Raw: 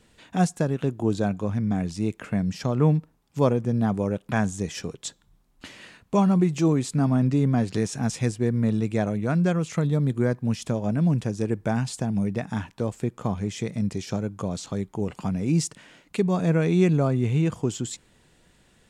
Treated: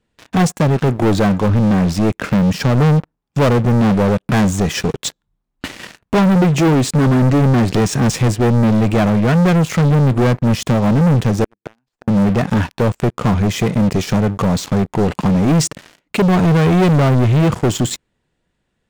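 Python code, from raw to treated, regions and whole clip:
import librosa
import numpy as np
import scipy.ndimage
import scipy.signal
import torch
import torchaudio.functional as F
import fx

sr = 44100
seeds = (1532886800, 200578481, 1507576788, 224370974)

y = fx.chain(x, sr, fx.highpass(hz=170.0, slope=24),
    fx.gate_flip(shuts_db=-24.0, range_db=-30),
    fx.running_max(window=3), at=(11.44, 12.08))
y = fx.high_shelf(y, sr, hz=4600.0, db=-10.0)
y = fx.leveller(y, sr, passes=5)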